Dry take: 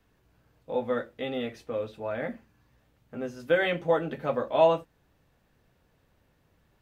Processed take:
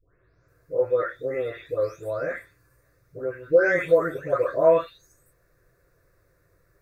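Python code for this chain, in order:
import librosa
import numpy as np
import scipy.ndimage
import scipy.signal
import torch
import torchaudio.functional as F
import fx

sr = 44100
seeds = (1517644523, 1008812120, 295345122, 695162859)

y = fx.spec_delay(x, sr, highs='late', ms=482)
y = fx.fixed_phaser(y, sr, hz=830.0, stages=6)
y = y * 10.0 ** (7.5 / 20.0)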